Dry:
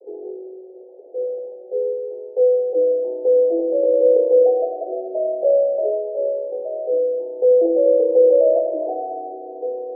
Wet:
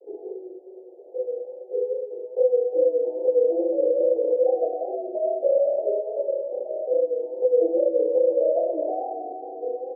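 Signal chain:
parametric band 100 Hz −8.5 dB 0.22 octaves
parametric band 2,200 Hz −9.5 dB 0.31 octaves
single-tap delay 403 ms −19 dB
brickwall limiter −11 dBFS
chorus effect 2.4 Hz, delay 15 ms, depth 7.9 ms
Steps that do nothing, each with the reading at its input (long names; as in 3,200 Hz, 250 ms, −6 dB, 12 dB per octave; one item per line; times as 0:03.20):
parametric band 100 Hz: nothing at its input below 300 Hz
parametric band 2,200 Hz: nothing at its input above 760 Hz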